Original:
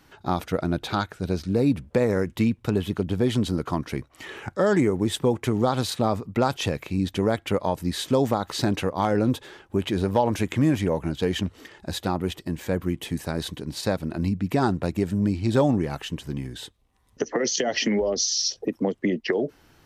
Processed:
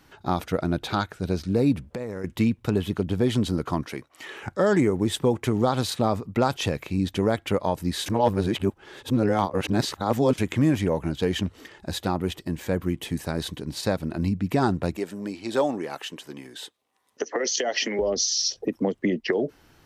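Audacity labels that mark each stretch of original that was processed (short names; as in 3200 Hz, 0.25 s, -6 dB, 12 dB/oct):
1.810000	2.240000	compressor 2.5:1, threshold -34 dBFS
3.860000	4.420000	HPF 390 Hz 6 dB/oct
8.060000	10.380000	reverse
14.960000	17.990000	HPF 380 Hz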